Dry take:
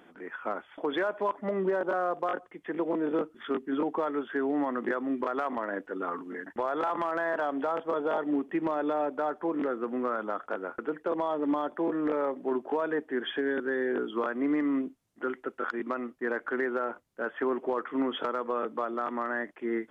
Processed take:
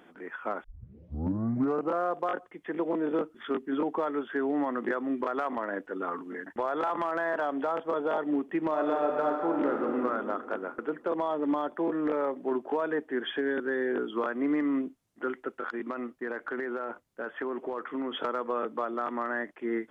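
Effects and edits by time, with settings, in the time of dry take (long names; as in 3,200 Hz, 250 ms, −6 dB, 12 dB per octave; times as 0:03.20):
0:00.64: tape start 1.41 s
0:08.68–0:09.98: thrown reverb, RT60 2.5 s, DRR 1 dB
0:15.55–0:18.21: downward compressor, threshold −29 dBFS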